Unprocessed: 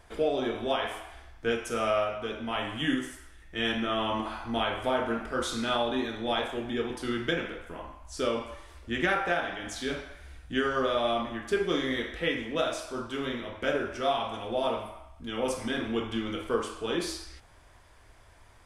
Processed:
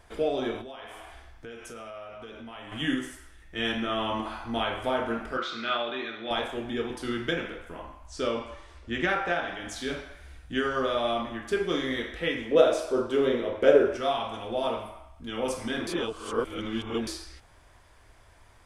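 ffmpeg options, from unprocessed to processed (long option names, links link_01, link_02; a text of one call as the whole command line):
ffmpeg -i in.wav -filter_complex "[0:a]asettb=1/sr,asplit=3[link_01][link_02][link_03];[link_01]atrim=end=0.614[link_04];[link_02]atrim=start=0.61:end=2.72,asetpts=PTS-STARTPTS,afade=type=in:duration=0.004:curve=qsin,afade=type=out:start_time=2.106:duration=0.004:curve=qsin,acompressor=threshold=-40dB:ratio=5:attack=3.2:release=140:knee=1:detection=peak[link_05];[link_03]atrim=start=2.716[link_06];[link_04][link_05]acrossfade=duration=0.004:curve1=hsin:curve2=qsin[link_07];[link_07][link_06]acrossfade=duration=0.004:curve1=qsin:curve2=hsin,asettb=1/sr,asplit=3[link_08][link_09][link_10];[link_08]atrim=end=5.374[link_11];[link_09]atrim=start=5.37:end=6.31,asetpts=PTS-STARTPTS,afade=type=in:duration=0.004:curve=qsin,afade=type=out:start_time=0.936:duration=0.004:curve=qsin,highpass=230,equalizer=frequency=270:width_type=q:width=4:gain=-10,equalizer=frequency=480:width_type=q:width=4:gain=-5,equalizer=frequency=880:width_type=q:width=4:gain=-9,equalizer=frequency=1300:width_type=q:width=4:gain=5,equalizer=frequency=2300:width_type=q:width=4:gain=5,lowpass=frequency=4500:width=0.5412,lowpass=frequency=4500:width=1.3066[link_12];[link_10]atrim=start=6.306[link_13];[link_11][link_12]acrossfade=duration=0.004:curve1=hsin:curve2=qsin[link_14];[link_14][link_13]acrossfade=duration=0.004:curve1=qsin:curve2=hsin,asettb=1/sr,asplit=3[link_15][link_16][link_17];[link_15]atrim=end=8.074[link_18];[link_16]atrim=start=8.07:end=9.48,asetpts=PTS-STARTPTS,afade=type=in:duration=0.004:curve=qsin,afade=type=out:start_time=1.406:duration=0.004:curve=qsin,lowpass=7400[link_19];[link_17]atrim=start=9.476[link_20];[link_18][link_19]acrossfade=duration=0.004:curve1=hsin:curve2=qsin[link_21];[link_21][link_20]acrossfade=duration=0.004:curve1=qsin:curve2=hsin,asettb=1/sr,asplit=3[link_22][link_23][link_24];[link_22]atrim=end=12.514[link_25];[link_23]atrim=start=12.51:end=13.97,asetpts=PTS-STARTPTS,afade=type=in:duration=0.004:curve=qsin,afade=type=out:start_time=1.456:duration=0.004:curve=qsin,equalizer=frequency=460:width_type=o:width=1.1:gain=14[link_26];[link_24]atrim=start=13.966[link_27];[link_25][link_26]acrossfade=duration=0.004:curve1=hsin:curve2=qsin[link_28];[link_28][link_27]acrossfade=duration=0.004:curve1=qsin:curve2=hsin,asplit=3[link_29][link_30][link_31];[link_29]atrim=end=15.872[link_32];[link_30]atrim=start=15.868:end=17.072,asetpts=PTS-STARTPTS,areverse[link_33];[link_31]atrim=start=17.068[link_34];[link_32][link_33]acrossfade=duration=0.004:curve1=hsin:curve2=hsin[link_35];[link_35][link_34]acrossfade=duration=0.004:curve1=hsin:curve2=hsin" out.wav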